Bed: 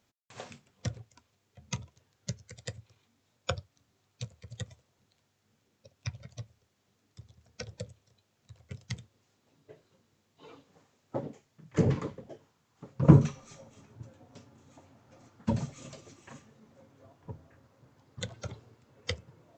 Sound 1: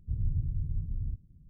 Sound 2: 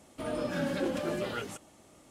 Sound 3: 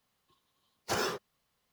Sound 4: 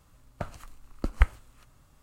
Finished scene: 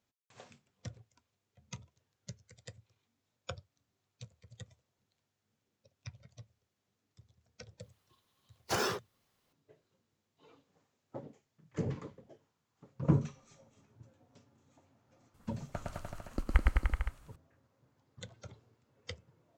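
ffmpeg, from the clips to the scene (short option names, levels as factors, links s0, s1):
-filter_complex "[0:a]volume=0.316[s0];[4:a]aecho=1:1:110|209|298.1|378.3|450.5|515.4:0.794|0.631|0.501|0.398|0.316|0.251[s1];[3:a]atrim=end=1.72,asetpts=PTS-STARTPTS,volume=0.944,afade=t=in:d=0.004:c=hsin,afade=t=out:st=1.716:d=0.004:c=hsin,adelay=7810[s2];[s1]atrim=end=2.02,asetpts=PTS-STARTPTS,volume=0.501,afade=t=in:d=0.004:c=hsin,afade=t=out:st=2.016:d=0.004:c=hsin,adelay=15340[s3];[s0][s2][s3]amix=inputs=3:normalize=0"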